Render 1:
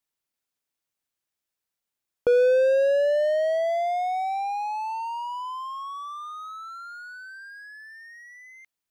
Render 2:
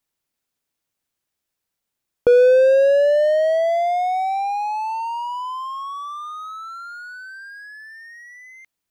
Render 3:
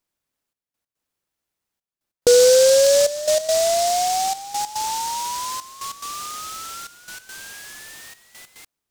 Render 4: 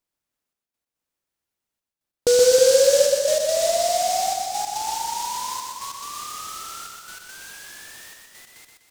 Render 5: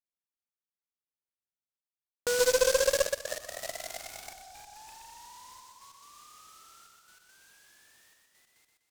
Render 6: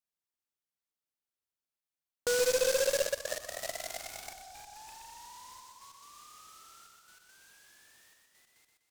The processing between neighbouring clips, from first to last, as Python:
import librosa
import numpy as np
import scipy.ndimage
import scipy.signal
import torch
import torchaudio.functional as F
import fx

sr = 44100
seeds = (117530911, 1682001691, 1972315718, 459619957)

y1 = fx.low_shelf(x, sr, hz=430.0, db=4.5)
y1 = F.gain(torch.from_numpy(y1), 4.5).numpy()
y2 = fx.step_gate(y1, sr, bpm=142, pattern='xxxxx..x.xxx', floor_db=-12.0, edge_ms=4.5)
y2 = fx.noise_mod_delay(y2, sr, seeds[0], noise_hz=5700.0, depth_ms=0.1)
y3 = fx.echo_feedback(y2, sr, ms=124, feedback_pct=47, wet_db=-4.5)
y3 = fx.echo_crushed(y3, sr, ms=317, feedback_pct=35, bits=7, wet_db=-8)
y3 = F.gain(torch.from_numpy(y3), -4.0).numpy()
y4 = fx.cheby_harmonics(y3, sr, harmonics=(2, 3, 7, 8), levels_db=(-15, -16, -19, -31), full_scale_db=-5.0)
y4 = F.gain(torch.from_numpy(y4), -7.5).numpy()
y5 = np.clip(y4, -10.0 ** (-22.0 / 20.0), 10.0 ** (-22.0 / 20.0))